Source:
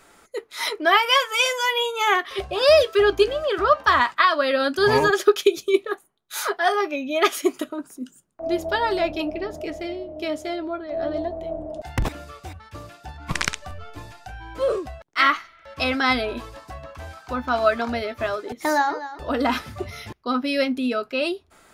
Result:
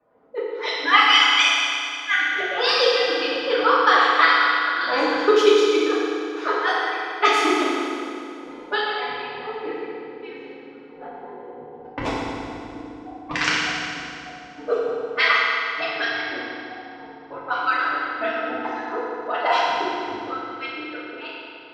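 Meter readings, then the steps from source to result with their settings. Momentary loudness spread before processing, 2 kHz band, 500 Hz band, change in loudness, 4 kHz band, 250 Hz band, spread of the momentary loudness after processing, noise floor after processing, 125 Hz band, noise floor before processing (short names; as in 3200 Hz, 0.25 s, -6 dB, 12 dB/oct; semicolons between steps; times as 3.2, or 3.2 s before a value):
21 LU, +4.0 dB, -1.5 dB, +2.0 dB, +4.0 dB, -2.0 dB, 21 LU, -42 dBFS, -9.5 dB, -55 dBFS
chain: median-filter separation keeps percussive; low-pass opened by the level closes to 620 Hz, open at -19 dBFS; three-band isolator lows -18 dB, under 260 Hz, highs -24 dB, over 6800 Hz; FDN reverb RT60 2.6 s, low-frequency decay 1.4×, high-frequency decay 0.85×, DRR -9 dB; gain -1.5 dB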